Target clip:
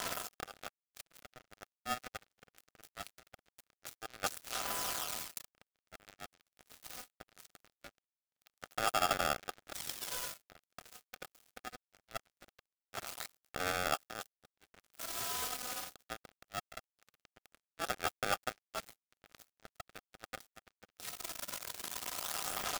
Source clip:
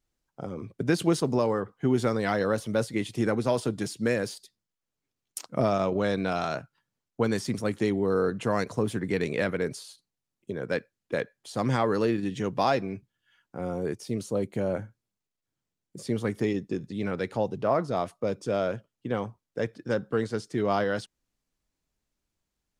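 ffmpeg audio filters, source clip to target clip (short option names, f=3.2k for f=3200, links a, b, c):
-filter_complex "[0:a]aeval=exprs='val(0)+0.5*0.0168*sgn(val(0))':c=same,alimiter=limit=-22dB:level=0:latency=1:release=27,areverse,acompressor=threshold=-39dB:ratio=12,areverse,aphaser=in_gain=1:out_gain=1:delay=4.2:decay=0.69:speed=0.22:type=sinusoidal,acrossover=split=410|3000[a][b][c];[b]acompressor=threshold=-44dB:ratio=6[d];[a][d][c]amix=inputs=3:normalize=0,equalizer=f=1.7k:t=o:w=0.23:g=-15,bandreject=f=188.9:t=h:w=4,bandreject=f=377.8:t=h:w=4,bandreject=f=566.7:t=h:w=4,bandreject=f=755.6:t=h:w=4,bandreject=f=944.5:t=h:w=4,bandreject=f=1.1334k:t=h:w=4,bandreject=f=1.3223k:t=h:w=4,bandreject=f=1.5112k:t=h:w=4,bandreject=f=1.7001k:t=h:w=4,bandreject=f=1.889k:t=h:w=4,bandreject=f=2.0779k:t=h:w=4,bandreject=f=2.2668k:t=h:w=4,bandreject=f=2.4557k:t=h:w=4,bandreject=f=2.6446k:t=h:w=4,bandreject=f=2.8335k:t=h:w=4,bandreject=f=3.0224k:t=h:w=4,bandreject=f=3.2113k:t=h:w=4,bandreject=f=3.4002k:t=h:w=4,bandreject=f=3.5891k:t=h:w=4,bandreject=f=3.778k:t=h:w=4,bandreject=f=3.9669k:t=h:w=4,bandreject=f=4.1558k:t=h:w=4,bandreject=f=4.3447k:t=h:w=4,bandreject=f=4.5336k:t=h:w=4,bandreject=f=4.7225k:t=h:w=4,bandreject=f=4.9114k:t=h:w=4,bandreject=f=5.1003k:t=h:w=4,bandreject=f=5.2892k:t=h:w=4,bandreject=f=5.4781k:t=h:w=4,bandreject=f=5.667k:t=h:w=4,bandreject=f=5.8559k:t=h:w=4,asplit=2[e][f];[f]aecho=0:1:105:0.112[g];[e][g]amix=inputs=2:normalize=0,acrusher=bits=4:mix=0:aa=0.5,lowshelf=f=170:t=q:w=1.5:g=-10,aeval=exprs='val(0)*sgn(sin(2*PI*1000*n/s))':c=same,volume=2.5dB"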